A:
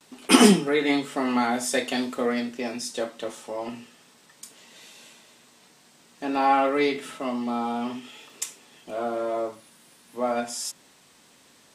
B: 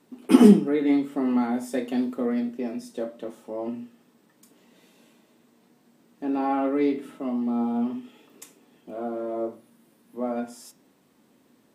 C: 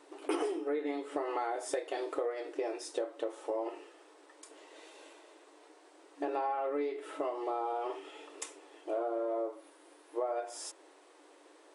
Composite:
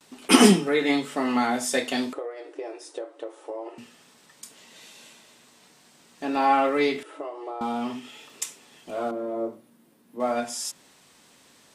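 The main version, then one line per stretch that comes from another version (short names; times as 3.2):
A
2.13–3.78 from C
7.03–7.61 from C
9.11–10.2 from B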